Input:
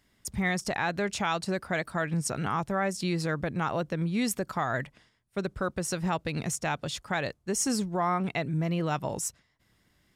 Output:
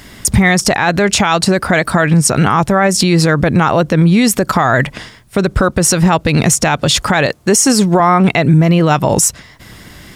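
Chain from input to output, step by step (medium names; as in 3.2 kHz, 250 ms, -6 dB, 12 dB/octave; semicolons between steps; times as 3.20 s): 7.26–8.00 s: high-pass 210 Hz 6 dB/octave; compression 6:1, threshold -37 dBFS, peak gain reduction 12.5 dB; loudness maximiser +32.5 dB; trim -1 dB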